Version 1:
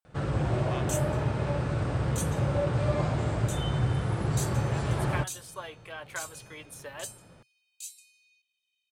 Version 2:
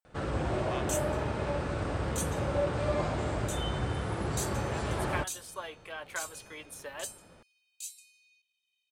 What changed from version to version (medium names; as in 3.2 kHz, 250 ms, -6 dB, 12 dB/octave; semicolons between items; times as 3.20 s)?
master: add peaking EQ 130 Hz -11.5 dB 0.64 oct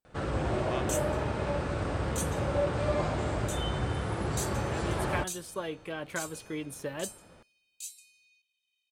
speech: remove Chebyshev high-pass 820 Hz, order 2; reverb: on